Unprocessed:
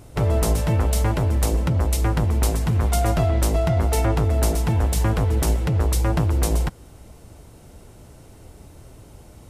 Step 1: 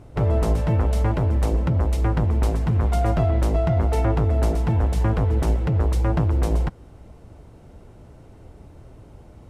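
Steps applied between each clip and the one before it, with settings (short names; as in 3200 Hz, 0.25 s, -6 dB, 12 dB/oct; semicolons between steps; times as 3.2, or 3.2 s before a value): LPF 1600 Hz 6 dB/oct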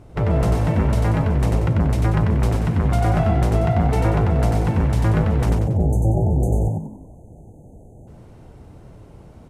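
spectral delete 5.5–8.07, 860–6100 Hz; dynamic EQ 2000 Hz, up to +4 dB, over -47 dBFS, Q 1.2; frequency-shifting echo 93 ms, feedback 41%, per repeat +51 Hz, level -3.5 dB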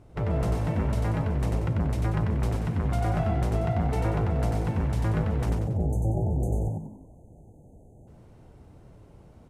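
reverb RT60 0.50 s, pre-delay 0.112 s, DRR 19.5 dB; gain -8 dB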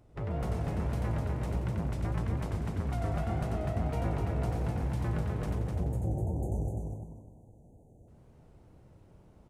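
wow and flutter 100 cents; feedback echo 0.252 s, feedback 26%, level -4 dB; gain -7.5 dB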